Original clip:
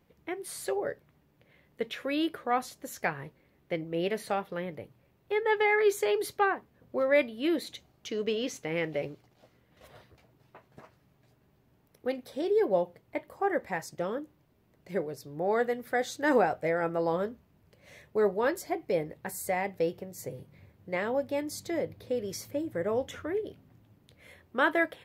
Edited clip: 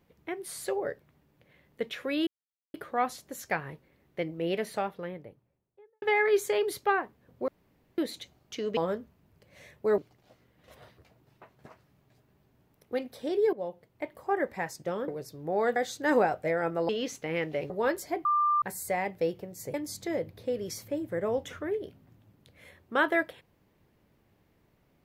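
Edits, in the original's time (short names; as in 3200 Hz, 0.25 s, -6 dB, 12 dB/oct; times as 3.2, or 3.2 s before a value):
2.27 insert silence 0.47 s
4.13–5.55 studio fade out
7.01–7.51 room tone
8.3–9.11 swap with 17.08–18.29
12.66–13.31 fade in, from -13 dB
14.21–15 cut
15.68–15.95 cut
18.84–19.21 bleep 1190 Hz -22 dBFS
20.33–21.37 cut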